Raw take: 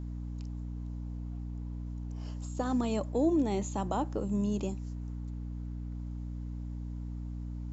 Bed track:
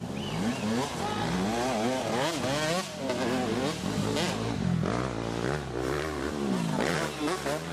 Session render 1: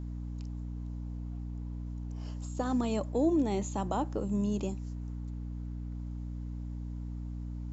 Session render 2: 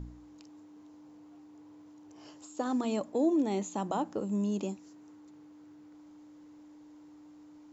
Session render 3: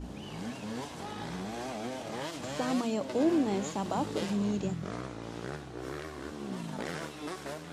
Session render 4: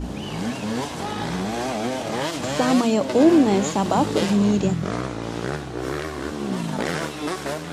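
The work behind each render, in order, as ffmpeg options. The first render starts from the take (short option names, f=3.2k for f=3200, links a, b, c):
-af anull
-af "bandreject=f=60:t=h:w=4,bandreject=f=120:t=h:w=4,bandreject=f=180:t=h:w=4,bandreject=f=240:t=h:w=4"
-filter_complex "[1:a]volume=-9.5dB[a];[0:a][a]amix=inputs=2:normalize=0"
-af "volume=12dB"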